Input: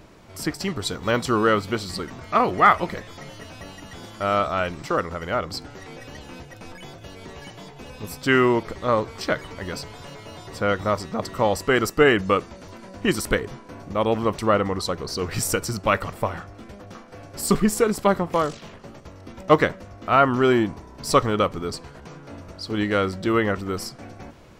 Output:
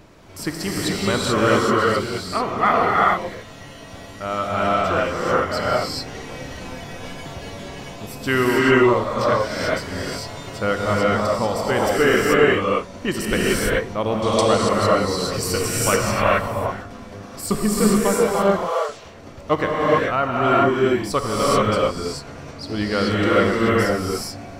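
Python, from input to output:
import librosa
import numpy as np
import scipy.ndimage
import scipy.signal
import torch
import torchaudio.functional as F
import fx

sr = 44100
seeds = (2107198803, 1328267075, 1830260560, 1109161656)

y = fx.brickwall_highpass(x, sr, low_hz=370.0, at=(18.29, 18.89))
y = fx.rev_gated(y, sr, seeds[0], gate_ms=460, shape='rising', drr_db=-6.0)
y = fx.rider(y, sr, range_db=4, speed_s=2.0)
y = fx.band_shelf(y, sr, hz=6000.0, db=13.5, octaves=1.7, at=(14.22, 14.69))
y = F.gain(torch.from_numpy(y), -3.5).numpy()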